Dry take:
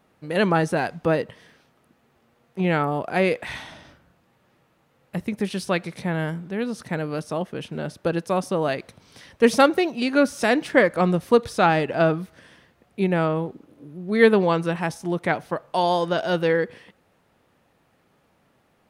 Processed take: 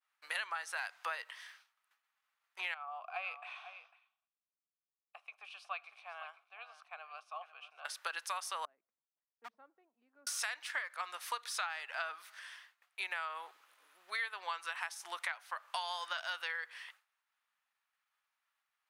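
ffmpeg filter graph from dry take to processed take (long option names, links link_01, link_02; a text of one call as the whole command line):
ffmpeg -i in.wav -filter_complex "[0:a]asettb=1/sr,asplit=3[link_01][link_02][link_03];[link_01]atrim=end=2.744[link_04];[link_02]atrim=start=2.74:end=7.85,asetpts=PTS-STARTPTS,afade=type=in:duration=0.004:curve=qsin,afade=type=out:start_time=5.106:duration=0.004:curve=qsin,asplit=3[link_05][link_06][link_07];[link_05]bandpass=frequency=730:width_type=q:width=8,volume=0dB[link_08];[link_06]bandpass=frequency=1090:width_type=q:width=8,volume=-6dB[link_09];[link_07]bandpass=frequency=2440:width_type=q:width=8,volume=-9dB[link_10];[link_08][link_09][link_10]amix=inputs=3:normalize=0,aecho=1:1:498:0.2,atrim=end_sample=225351[link_11];[link_03]atrim=start=7.846[link_12];[link_04][link_11]acrossfade=duration=0.004:curve1=hsin:curve2=qsin[link_13];[link_13][link_12]acrossfade=duration=0.004:curve1=qsin:curve2=hsin,asettb=1/sr,asplit=3[link_14][link_15][link_16];[link_14]atrim=end=8.654[link_17];[link_15]atrim=start=8.65:end=10.27,asetpts=PTS-STARTPTS,afade=type=in:duration=0.004:curve=qsin,afade=type=out:start_time=1.616:duration=0.004:curve=qsin,asuperpass=centerf=190:order=4:qfactor=1.8,asoftclip=type=hard:threshold=-17.5dB[link_18];[link_16]atrim=start=10.266[link_19];[link_17][link_18]acrossfade=duration=0.004:curve1=hsin:curve2=qsin[link_20];[link_20][link_19]acrossfade=duration=0.004:curve1=qsin:curve2=hsin,agate=range=-33dB:threshold=-51dB:ratio=3:detection=peak,highpass=frequency=1100:width=0.5412,highpass=frequency=1100:width=1.3066,acompressor=threshold=-37dB:ratio=16,volume=2dB" out.wav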